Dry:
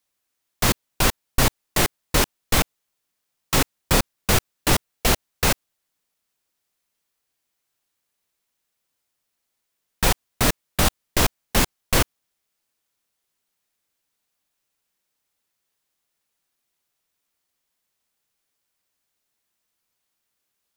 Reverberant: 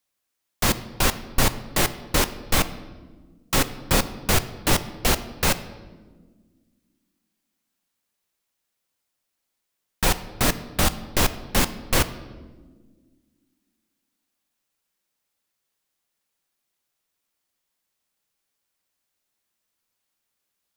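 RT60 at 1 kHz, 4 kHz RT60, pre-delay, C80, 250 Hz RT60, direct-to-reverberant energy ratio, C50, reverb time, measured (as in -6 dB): 1.2 s, 0.90 s, 4 ms, 16.0 dB, 2.6 s, 11.5 dB, 14.5 dB, 1.5 s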